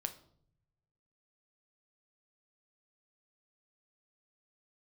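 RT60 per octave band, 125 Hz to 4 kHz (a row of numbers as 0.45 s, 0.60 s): 1.6 s, 1.0 s, 0.75 s, 0.55 s, 0.40 s, 0.45 s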